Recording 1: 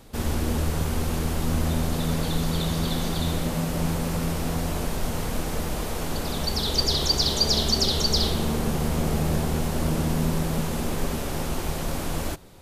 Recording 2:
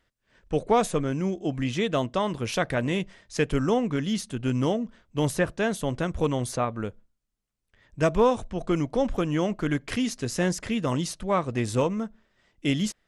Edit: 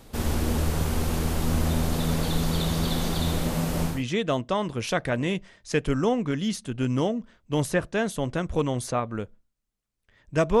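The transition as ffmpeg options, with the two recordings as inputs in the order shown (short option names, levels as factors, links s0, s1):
-filter_complex "[0:a]apad=whole_dur=10.6,atrim=end=10.6,atrim=end=4.04,asetpts=PTS-STARTPTS[s0];[1:a]atrim=start=1.47:end=8.25,asetpts=PTS-STARTPTS[s1];[s0][s1]acrossfade=d=0.22:c1=tri:c2=tri"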